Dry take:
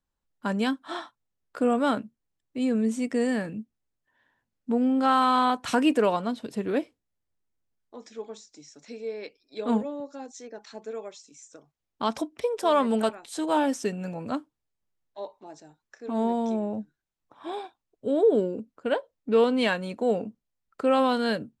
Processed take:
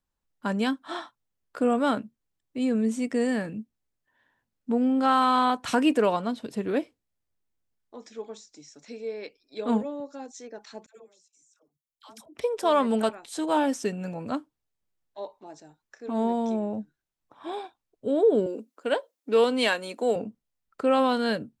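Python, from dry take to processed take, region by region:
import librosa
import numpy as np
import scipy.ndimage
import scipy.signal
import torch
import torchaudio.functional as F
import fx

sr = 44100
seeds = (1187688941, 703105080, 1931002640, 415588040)

y = fx.chain(x, sr, fx.pre_emphasis(coefficient=0.8),
    fx.level_steps(step_db=16),
    fx.dispersion(late='lows', ms=96.0, hz=680.0), at=(10.86, 12.35))
y = fx.chain(y, sr, fx.highpass(hz=250.0, slope=24),
    fx.high_shelf(hz=4100.0, db=9.5), at=(18.46, 20.16))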